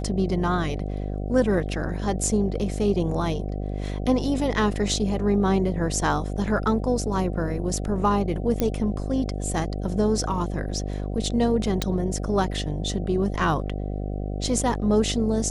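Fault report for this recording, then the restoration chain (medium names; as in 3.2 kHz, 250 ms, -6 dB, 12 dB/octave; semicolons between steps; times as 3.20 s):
buzz 50 Hz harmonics 15 -29 dBFS
8.60 s: pop -10 dBFS
11.82 s: pop -9 dBFS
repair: de-click; de-hum 50 Hz, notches 15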